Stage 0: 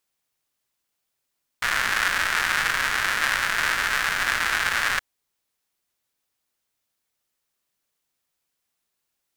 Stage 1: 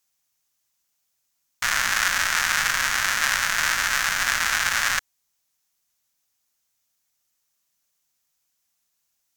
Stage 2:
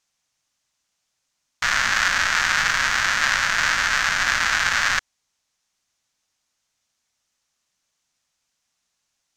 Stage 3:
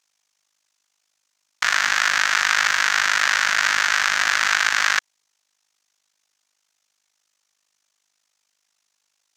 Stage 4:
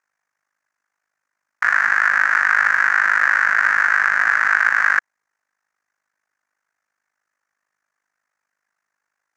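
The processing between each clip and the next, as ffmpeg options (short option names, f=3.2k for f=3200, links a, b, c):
-af "equalizer=f=400:t=o:w=0.67:g=-8,equalizer=f=6.3k:t=o:w=0.67:g=8,equalizer=f=16k:t=o:w=0.67:g=7"
-filter_complex "[0:a]lowpass=6.4k,asplit=2[a][b];[b]asoftclip=type=tanh:threshold=-19.5dB,volume=-3.5dB[c];[a][c]amix=inputs=2:normalize=0"
-filter_complex "[0:a]tremolo=f=51:d=0.889,highpass=f=560:p=1,asplit=2[a][b];[b]alimiter=limit=-14dB:level=0:latency=1:release=48,volume=3dB[c];[a][c]amix=inputs=2:normalize=0"
-af "highshelf=f=2.4k:t=q:w=3:g=-12,volume=-1.5dB"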